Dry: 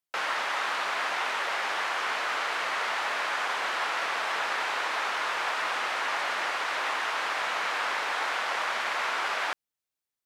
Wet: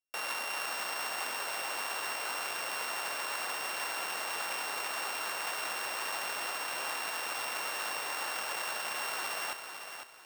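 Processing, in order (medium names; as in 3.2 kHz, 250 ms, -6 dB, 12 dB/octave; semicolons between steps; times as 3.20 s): sorted samples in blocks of 16 samples; bit-crushed delay 503 ms, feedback 35%, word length 9-bit, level -7.5 dB; trim -6.5 dB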